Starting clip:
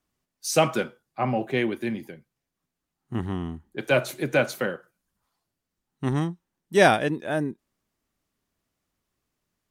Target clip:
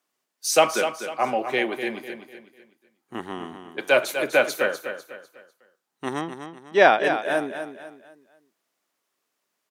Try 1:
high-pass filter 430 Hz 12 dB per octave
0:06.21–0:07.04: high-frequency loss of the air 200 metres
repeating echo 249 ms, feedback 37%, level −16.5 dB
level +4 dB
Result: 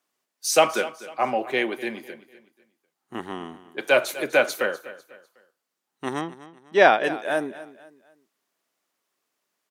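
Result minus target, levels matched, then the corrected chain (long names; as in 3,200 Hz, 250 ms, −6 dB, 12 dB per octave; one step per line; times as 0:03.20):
echo-to-direct −7.5 dB
high-pass filter 430 Hz 12 dB per octave
0:06.21–0:07.04: high-frequency loss of the air 200 metres
repeating echo 249 ms, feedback 37%, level −9 dB
level +4 dB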